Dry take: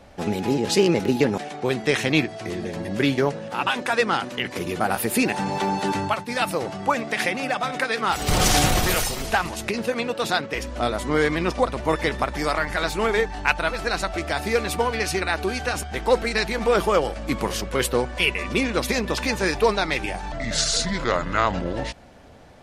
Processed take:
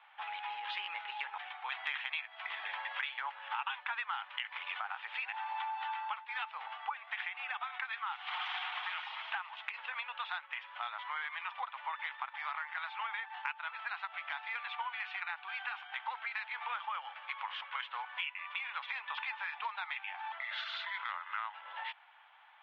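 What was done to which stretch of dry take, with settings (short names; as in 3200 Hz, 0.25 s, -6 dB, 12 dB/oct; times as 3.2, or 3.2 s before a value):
1.72–4.81 gain +8.5 dB
whole clip: Chebyshev band-pass 850–3400 Hz, order 4; compressor 6:1, threshold -32 dBFS; gain -4 dB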